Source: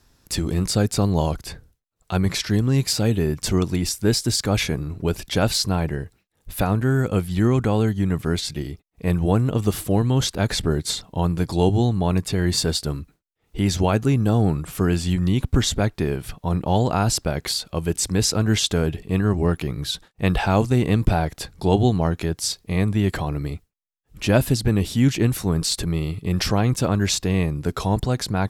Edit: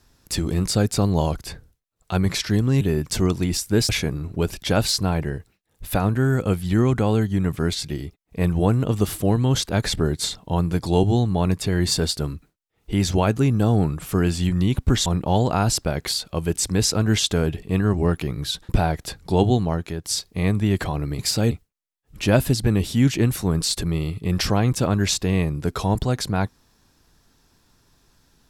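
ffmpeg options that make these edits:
ffmpeg -i in.wav -filter_complex "[0:a]asplit=8[link_01][link_02][link_03][link_04][link_05][link_06][link_07][link_08];[link_01]atrim=end=2.812[link_09];[link_02]atrim=start=3.128:end=4.212[link_10];[link_03]atrim=start=4.548:end=15.722[link_11];[link_04]atrim=start=16.458:end=20.092[link_12];[link_05]atrim=start=21.018:end=22.37,asetpts=PTS-STARTPTS,afade=type=out:start_time=0.752:duration=0.6:silence=0.446684[link_13];[link_06]atrim=start=22.37:end=23.522,asetpts=PTS-STARTPTS,afade=type=in:duration=0.004:curve=hsin:silence=0.446684[link_14];[link_07]atrim=start=2.808:end=3.132[link_15];[link_08]atrim=start=23.518[link_16];[link_09][link_10]acrossfade=duration=0.004:curve1=hsin:curve2=hsin[link_17];[link_17][link_11]acrossfade=duration=0.004:curve1=hsin:curve2=hsin[link_18];[link_18][link_12]acrossfade=duration=0.004:curve1=hsin:curve2=hsin[link_19];[link_13][link_14]concat=n=2:v=0:a=1[link_20];[link_19][link_20]acrossfade=duration=0.004:curve1=hsin:curve2=hsin[link_21];[link_21][link_15]acrossfade=duration=0.004:curve1=hsin:curve2=hsin[link_22];[link_22][link_16]acrossfade=duration=0.004:curve1=hsin:curve2=hsin" out.wav

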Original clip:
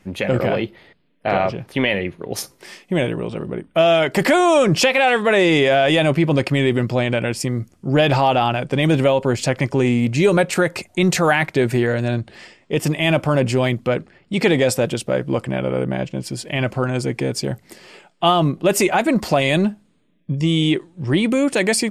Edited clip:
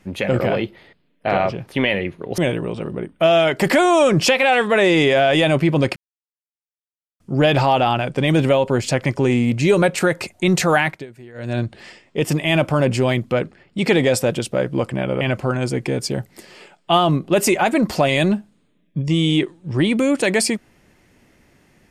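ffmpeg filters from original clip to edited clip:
ffmpeg -i in.wav -filter_complex "[0:a]asplit=7[link_01][link_02][link_03][link_04][link_05][link_06][link_07];[link_01]atrim=end=2.382[link_08];[link_02]atrim=start=2.928:end=6.51,asetpts=PTS-STARTPTS,afade=type=out:start_time=3.578:duration=0.004:curve=hsin[link_09];[link_03]atrim=start=6.51:end=7.75,asetpts=PTS-STARTPTS,volume=0[link_10];[link_04]atrim=start=7.75:end=11.61,asetpts=PTS-STARTPTS,afade=type=in:duration=0.004:curve=hsin,afade=type=out:start_time=3.61:duration=0.25:silence=0.0749894[link_11];[link_05]atrim=start=11.61:end=11.89,asetpts=PTS-STARTPTS,volume=-22.5dB[link_12];[link_06]atrim=start=11.89:end=15.762,asetpts=PTS-STARTPTS,afade=type=in:duration=0.25:silence=0.0749894[link_13];[link_07]atrim=start=16.538[link_14];[link_09][link_10][link_11][link_12][link_13]concat=n=5:v=0:a=1[link_15];[link_08][link_15]acrossfade=duration=0.004:curve1=hsin:curve2=hsin[link_16];[link_16][link_14]acrossfade=duration=0.004:curve1=hsin:curve2=hsin" out.wav

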